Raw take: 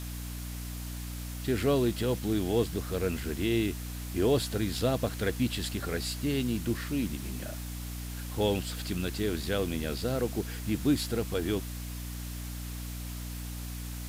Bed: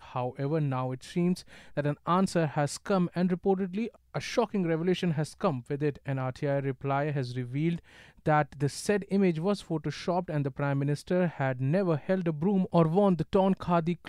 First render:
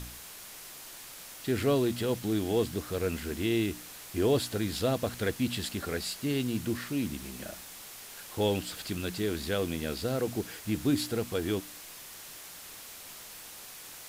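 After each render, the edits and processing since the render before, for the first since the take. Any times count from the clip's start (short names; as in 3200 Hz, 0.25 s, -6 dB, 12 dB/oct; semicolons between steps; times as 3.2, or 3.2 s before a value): de-hum 60 Hz, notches 5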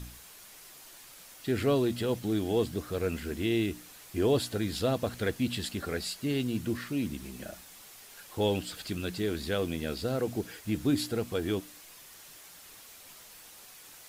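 denoiser 6 dB, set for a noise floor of -47 dBFS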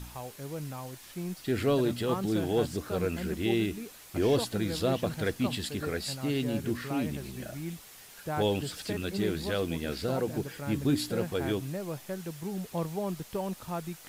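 add bed -9.5 dB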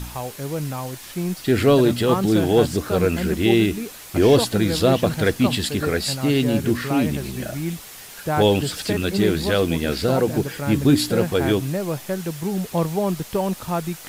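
gain +11 dB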